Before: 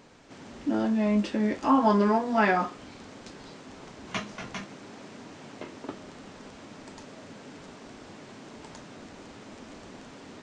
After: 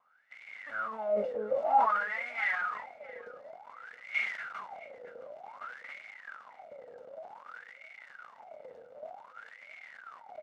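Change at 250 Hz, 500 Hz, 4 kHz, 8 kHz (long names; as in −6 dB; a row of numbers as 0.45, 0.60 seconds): −26.5 dB, −4.5 dB, −10.0 dB, can't be measured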